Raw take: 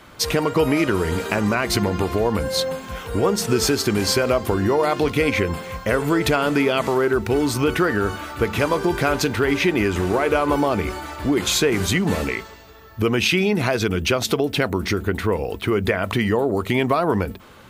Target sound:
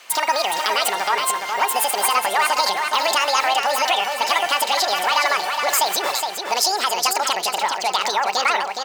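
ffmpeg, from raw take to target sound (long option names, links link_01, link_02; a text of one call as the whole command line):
ffmpeg -i in.wav -filter_complex "[0:a]highpass=400,asplit=2[link_01][link_02];[link_02]adelay=832,lowpass=frequency=4300:poles=1,volume=-5dB,asplit=2[link_03][link_04];[link_04]adelay=832,lowpass=frequency=4300:poles=1,volume=0.39,asplit=2[link_05][link_06];[link_06]adelay=832,lowpass=frequency=4300:poles=1,volume=0.39,asplit=2[link_07][link_08];[link_08]adelay=832,lowpass=frequency=4300:poles=1,volume=0.39,asplit=2[link_09][link_10];[link_10]adelay=832,lowpass=frequency=4300:poles=1,volume=0.39[link_11];[link_03][link_05][link_07][link_09][link_11]amix=inputs=5:normalize=0[link_12];[link_01][link_12]amix=inputs=2:normalize=0,asetrate=88200,aresample=44100,volume=2dB" out.wav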